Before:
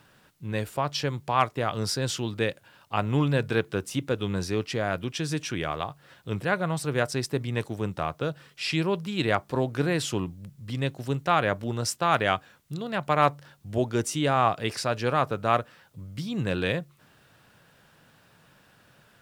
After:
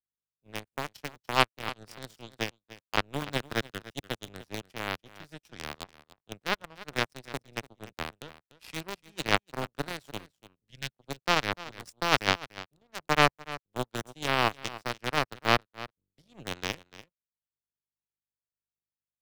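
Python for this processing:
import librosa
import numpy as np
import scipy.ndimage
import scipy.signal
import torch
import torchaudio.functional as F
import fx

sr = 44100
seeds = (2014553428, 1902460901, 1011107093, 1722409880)

p1 = fx.add_hum(x, sr, base_hz=50, snr_db=21)
p2 = fx.power_curve(p1, sr, exponent=3.0)
p3 = fx.quant_dither(p2, sr, seeds[0], bits=6, dither='none')
p4 = p2 + F.gain(torch.from_numpy(p3), -4.0).numpy()
p5 = fx.spec_box(p4, sr, start_s=10.69, length_s=0.24, low_hz=220.0, high_hz=1400.0, gain_db=-11)
p6 = p5 + fx.echo_single(p5, sr, ms=293, db=-19.5, dry=0)
p7 = fx.band_squash(p6, sr, depth_pct=40)
y = F.gain(torch.from_numpy(p7), 5.0).numpy()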